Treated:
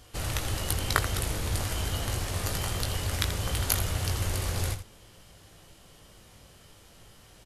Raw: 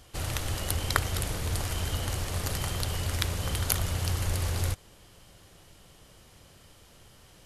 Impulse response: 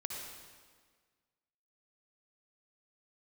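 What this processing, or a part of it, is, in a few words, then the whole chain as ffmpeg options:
slapback doubling: -filter_complex "[0:a]asplit=3[link_01][link_02][link_03];[link_02]adelay=19,volume=-6.5dB[link_04];[link_03]adelay=83,volume=-11dB[link_05];[link_01][link_04][link_05]amix=inputs=3:normalize=0"

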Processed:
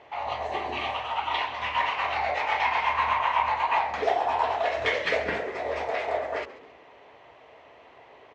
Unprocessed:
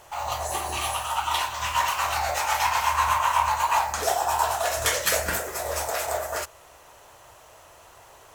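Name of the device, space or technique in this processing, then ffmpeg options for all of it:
frequency-shifting delay pedal into a guitar cabinet: -filter_complex "[0:a]asplit=4[link_01][link_02][link_03][link_04];[link_02]adelay=136,afreqshift=-93,volume=-16dB[link_05];[link_03]adelay=272,afreqshift=-186,volume=-24.6dB[link_06];[link_04]adelay=408,afreqshift=-279,volume=-33.3dB[link_07];[link_01][link_05][link_06][link_07]amix=inputs=4:normalize=0,highpass=91,equalizer=frequency=95:width_type=q:width=4:gain=-7,equalizer=frequency=260:width_type=q:width=4:gain=9,equalizer=frequency=430:width_type=q:width=4:gain=8,equalizer=frequency=700:width_type=q:width=4:gain=3,equalizer=frequency=1400:width_type=q:width=4:gain=-6,equalizer=frequency=2100:width_type=q:width=4:gain=8,lowpass=frequency=3600:width=0.5412,lowpass=frequency=3600:width=1.3066,volume=-2.5dB"

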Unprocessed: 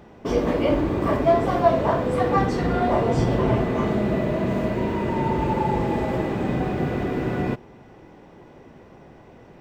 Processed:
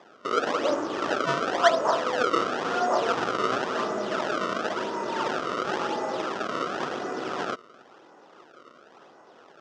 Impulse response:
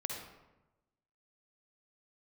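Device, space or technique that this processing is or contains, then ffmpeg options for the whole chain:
circuit-bent sampling toy: -af "acrusher=samples=30:mix=1:aa=0.000001:lfo=1:lforange=48:lforate=0.95,highpass=450,equalizer=frequency=1300:width_type=q:width=4:gain=9,equalizer=frequency=2200:width_type=q:width=4:gain=-7,equalizer=frequency=4200:width_type=q:width=4:gain=-6,lowpass=frequency=5500:width=0.5412,lowpass=frequency=5500:width=1.3066,volume=-1.5dB"

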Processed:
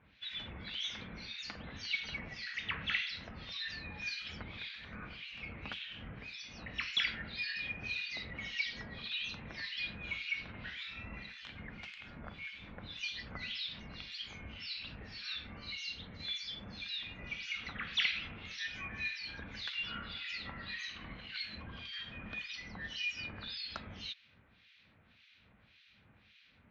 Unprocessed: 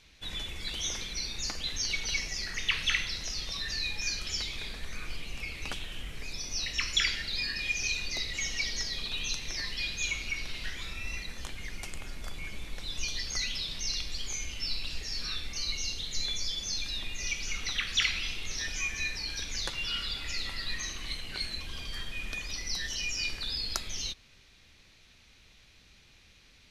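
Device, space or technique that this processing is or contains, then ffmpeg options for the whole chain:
guitar amplifier with harmonic tremolo: -filter_complex "[0:a]acrossover=split=1700[link_01][link_02];[link_01]aeval=exprs='val(0)*(1-1/2+1/2*cos(2*PI*1.8*n/s))':channel_layout=same[link_03];[link_02]aeval=exprs='val(0)*(1-1/2-1/2*cos(2*PI*1.8*n/s))':channel_layout=same[link_04];[link_03][link_04]amix=inputs=2:normalize=0,asoftclip=type=tanh:threshold=-23dB,highpass=86,equalizer=frequency=100:width_type=q:width=4:gain=4,equalizer=frequency=210:width_type=q:width=4:gain=5,equalizer=frequency=380:width_type=q:width=4:gain=-6,equalizer=frequency=1500:width_type=q:width=4:gain=3,lowpass=frequency=3600:width=0.5412,lowpass=frequency=3600:width=1.3066,volume=1.5dB"

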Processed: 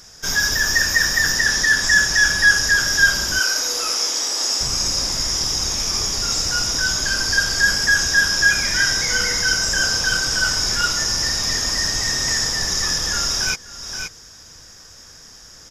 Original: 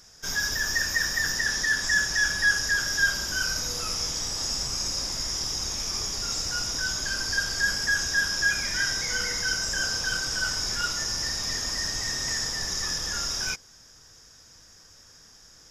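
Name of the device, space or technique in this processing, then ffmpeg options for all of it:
ducked delay: -filter_complex "[0:a]asettb=1/sr,asplit=3[link_01][link_02][link_03];[link_01]atrim=end=3.394[link_04];[link_02]atrim=start=3.39:end=4.61,asetpts=PTS-STARTPTS,afade=type=in:duration=0.004:curve=qsin,afade=type=out:start_time=1.216:duration=0.004:curve=qsin,highpass=frequency=300:width=0.5412,highpass=frequency=300:width=1.3066[link_05];[link_03]atrim=start=4.606[link_06];[link_04][link_05]acrossfade=duration=0.004:curve1=hsin:curve2=qsin[link_07];[link_07][link_06]acrossfade=duration=0.004:curve1=qsin:curve2=hsin,asplit=3[link_08][link_09][link_10];[link_09]adelay=524,volume=-6.5dB[link_11];[link_10]apad=whole_len=715804[link_12];[link_11][link_12]sidechaincompress=threshold=-44dB:ratio=8:attack=7:release=338[link_13];[link_08][link_13]amix=inputs=2:normalize=0,volume=8.5dB"

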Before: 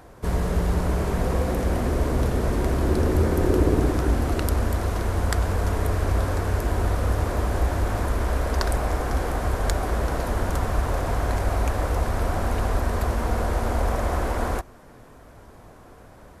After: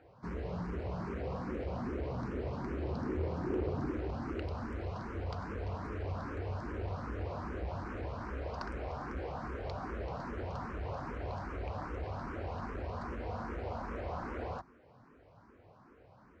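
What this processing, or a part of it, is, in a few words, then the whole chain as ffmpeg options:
barber-pole phaser into a guitar amplifier: -filter_complex "[0:a]asplit=2[link_01][link_02];[link_02]afreqshift=2.5[link_03];[link_01][link_03]amix=inputs=2:normalize=1,asoftclip=type=tanh:threshold=-17.5dB,highpass=84,equalizer=frequency=670:width_type=q:width=4:gain=-3,equalizer=frequency=1800:width_type=q:width=4:gain=-3,equalizer=frequency=3500:width_type=q:width=4:gain=-9,lowpass=frequency=4400:width=0.5412,lowpass=frequency=4400:width=1.3066,volume=-8dB"

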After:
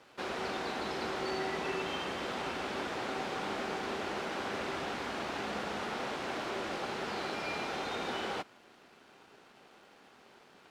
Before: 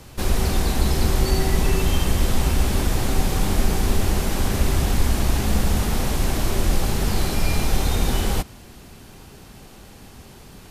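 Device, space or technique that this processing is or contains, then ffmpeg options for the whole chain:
pocket radio on a weak battery: -af "highpass=390,lowpass=3300,aeval=exprs='sgn(val(0))*max(abs(val(0))-0.00119,0)':channel_layout=same,equalizer=frequency=1400:width_type=o:width=0.23:gain=4,volume=-6dB"

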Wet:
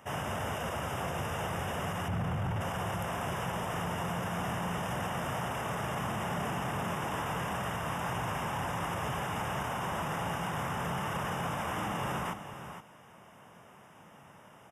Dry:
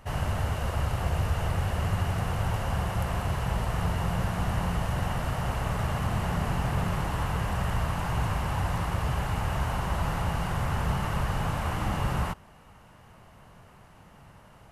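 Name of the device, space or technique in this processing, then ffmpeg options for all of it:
PA system with an anti-feedback notch: -filter_complex "[0:a]asettb=1/sr,asplit=3[link_01][link_02][link_03];[link_01]atrim=end=2.084[link_04];[link_02]atrim=start=2.08:end=2.61,asetpts=PTS-STARTPTS,afade=type=in:duration=0.004:curve=qsin,afade=type=out:start_time=0.526:duration=0.004:curve=qsin,bass=frequency=250:gain=12,treble=frequency=4000:gain=-8[link_05];[link_03]atrim=start=2.606[link_06];[link_04][link_05]acrossfade=duration=0.004:curve1=hsin:curve2=qsin[link_07];[link_07][link_06]acrossfade=duration=0.004:curve1=qsin:curve2=hsin,highpass=180,asuperstop=centerf=4300:order=20:qfactor=3.7,aecho=1:1:471:0.251,alimiter=level_in=2dB:limit=-24dB:level=0:latency=1:release=15,volume=-2dB"

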